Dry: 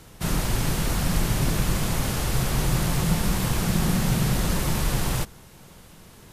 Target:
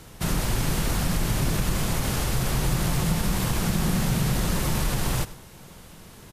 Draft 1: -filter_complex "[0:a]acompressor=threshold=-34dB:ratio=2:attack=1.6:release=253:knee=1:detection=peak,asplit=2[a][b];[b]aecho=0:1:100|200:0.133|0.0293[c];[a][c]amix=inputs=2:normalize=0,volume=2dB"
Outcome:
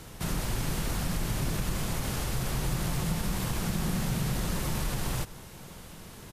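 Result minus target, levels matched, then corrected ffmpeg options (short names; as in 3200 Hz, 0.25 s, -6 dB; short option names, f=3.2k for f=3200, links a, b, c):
compressor: peak gain reduction +6 dB
-filter_complex "[0:a]acompressor=threshold=-22dB:ratio=2:attack=1.6:release=253:knee=1:detection=peak,asplit=2[a][b];[b]aecho=0:1:100|200:0.133|0.0293[c];[a][c]amix=inputs=2:normalize=0,volume=2dB"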